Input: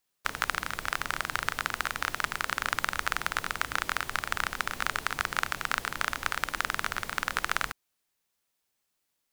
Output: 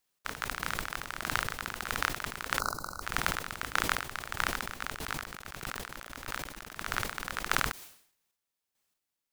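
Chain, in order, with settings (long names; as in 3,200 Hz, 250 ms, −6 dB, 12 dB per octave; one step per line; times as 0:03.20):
0:02.59–0:03.02: gain on a spectral selection 1,500–3,900 Hz −27 dB
0:04.94–0:06.76: compressor whose output falls as the input rises −39 dBFS, ratio −1
square-wave tremolo 1.6 Hz, depth 60%, duty 30%
level that may fall only so fast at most 97 dB per second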